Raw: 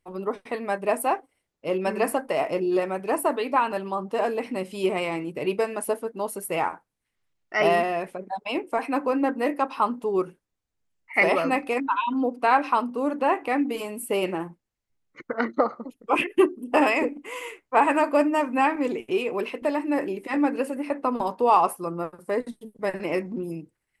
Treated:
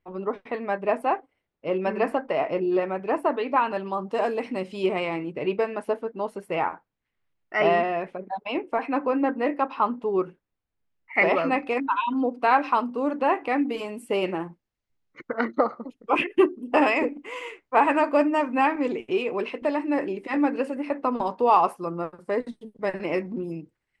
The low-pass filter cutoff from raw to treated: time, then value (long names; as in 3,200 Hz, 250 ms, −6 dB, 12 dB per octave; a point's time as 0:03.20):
0:03.46 3,000 Hz
0:04.22 7,600 Hz
0:05.37 3,200 Hz
0:11.24 3,200 Hz
0:11.94 5,300 Hz